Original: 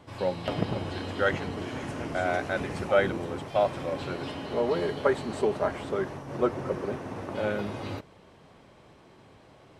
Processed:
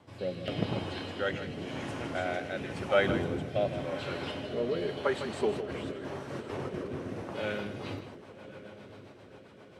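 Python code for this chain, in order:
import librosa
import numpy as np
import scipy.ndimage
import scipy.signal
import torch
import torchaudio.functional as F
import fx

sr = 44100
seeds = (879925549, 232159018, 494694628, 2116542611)

y = fx.dynamic_eq(x, sr, hz=2900.0, q=1.4, threshold_db=-48.0, ratio=4.0, max_db=6)
y = scipy.signal.sosfilt(scipy.signal.butter(2, 66.0, 'highpass', fs=sr, output='sos'), y)
y = fx.low_shelf(y, sr, hz=380.0, db=8.0, at=(3.09, 3.85))
y = fx.over_compress(y, sr, threshold_db=-34.0, ratio=-1.0, at=(5.51, 7.22))
y = fx.echo_diffused(y, sr, ms=1085, feedback_pct=51, wet_db=-13.5)
y = fx.rotary_switch(y, sr, hz=0.9, then_hz=7.5, switch_at_s=7.44)
y = y + 10.0 ** (-11.0 / 20.0) * np.pad(y, (int(156 * sr / 1000.0), 0))[:len(y)]
y = y * 10.0 ** (-2.5 / 20.0)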